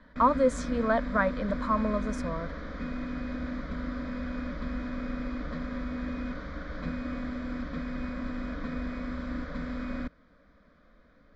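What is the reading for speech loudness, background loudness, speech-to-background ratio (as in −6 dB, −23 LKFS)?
−28.5 LKFS, −36.0 LKFS, 7.5 dB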